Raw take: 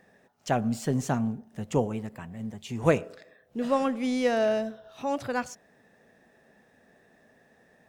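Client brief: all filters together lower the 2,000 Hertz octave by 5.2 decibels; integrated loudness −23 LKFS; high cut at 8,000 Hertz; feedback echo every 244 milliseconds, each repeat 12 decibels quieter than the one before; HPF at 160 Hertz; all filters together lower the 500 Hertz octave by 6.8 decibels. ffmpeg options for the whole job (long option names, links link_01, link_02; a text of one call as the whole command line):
ffmpeg -i in.wav -af "highpass=160,lowpass=8000,equalizer=frequency=500:width_type=o:gain=-8,equalizer=frequency=2000:width_type=o:gain=-6.5,aecho=1:1:244|488|732:0.251|0.0628|0.0157,volume=10.5dB" out.wav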